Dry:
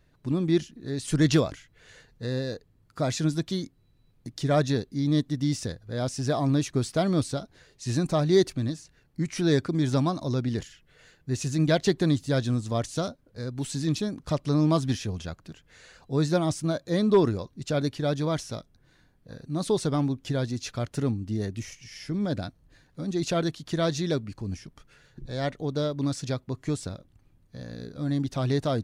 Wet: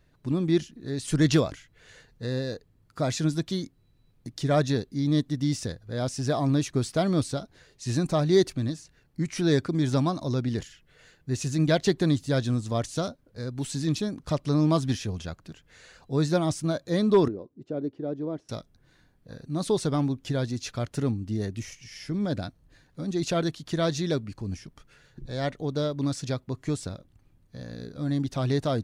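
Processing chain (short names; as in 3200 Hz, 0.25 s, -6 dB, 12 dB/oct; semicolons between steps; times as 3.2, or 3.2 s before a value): 17.28–18.49 band-pass 350 Hz, Q 1.7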